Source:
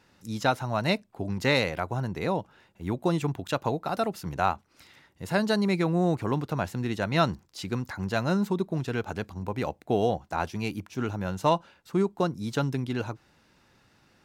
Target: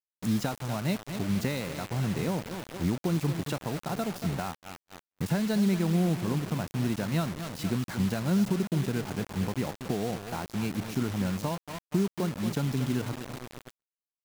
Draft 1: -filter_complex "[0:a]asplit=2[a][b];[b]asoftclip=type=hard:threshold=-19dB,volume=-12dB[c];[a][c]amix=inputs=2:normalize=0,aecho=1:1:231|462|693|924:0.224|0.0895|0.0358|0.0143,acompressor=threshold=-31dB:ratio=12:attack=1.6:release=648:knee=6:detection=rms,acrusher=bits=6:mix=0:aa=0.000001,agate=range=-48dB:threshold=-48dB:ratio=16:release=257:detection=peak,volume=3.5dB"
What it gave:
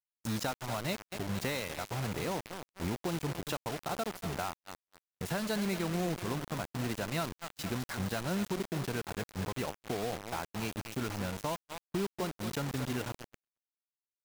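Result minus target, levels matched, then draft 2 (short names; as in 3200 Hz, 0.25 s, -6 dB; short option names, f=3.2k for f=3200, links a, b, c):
250 Hz band -2.5 dB
-filter_complex "[0:a]asplit=2[a][b];[b]asoftclip=type=hard:threshold=-19dB,volume=-12dB[c];[a][c]amix=inputs=2:normalize=0,aecho=1:1:231|462|693|924:0.224|0.0895|0.0358|0.0143,acompressor=threshold=-31dB:ratio=12:attack=1.6:release=648:knee=6:detection=rms,equalizer=f=180:t=o:w=1.8:g=10,acrusher=bits=6:mix=0:aa=0.000001,agate=range=-48dB:threshold=-48dB:ratio=16:release=257:detection=peak,volume=3.5dB"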